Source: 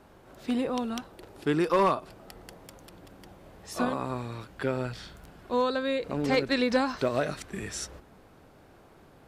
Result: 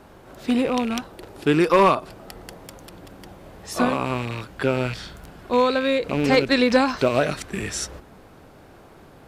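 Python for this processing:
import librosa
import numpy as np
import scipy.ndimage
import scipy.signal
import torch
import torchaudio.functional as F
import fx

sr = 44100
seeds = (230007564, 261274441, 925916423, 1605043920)

y = fx.rattle_buzz(x, sr, strikes_db=-39.0, level_db=-30.0)
y = y * librosa.db_to_amplitude(7.5)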